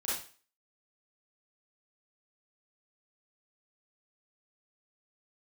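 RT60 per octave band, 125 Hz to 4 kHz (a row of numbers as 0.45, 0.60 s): 0.35, 0.35, 0.40, 0.40, 0.40, 0.40 s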